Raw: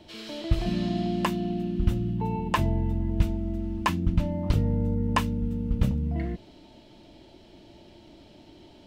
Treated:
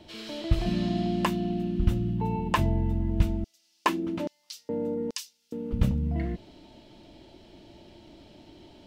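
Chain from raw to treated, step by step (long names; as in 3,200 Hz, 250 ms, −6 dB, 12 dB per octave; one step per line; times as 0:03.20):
0:03.44–0:05.73: auto-filter high-pass square 1.2 Hz 360–5,200 Hz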